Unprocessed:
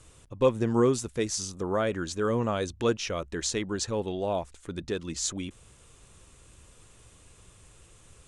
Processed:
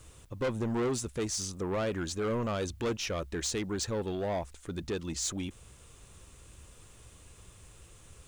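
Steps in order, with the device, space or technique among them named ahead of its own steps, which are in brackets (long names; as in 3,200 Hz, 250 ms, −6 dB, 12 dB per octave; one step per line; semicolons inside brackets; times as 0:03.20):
open-reel tape (soft clipping −27 dBFS, distortion −8 dB; parametric band 66 Hz +3.5 dB 0.92 octaves; white noise bed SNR 39 dB)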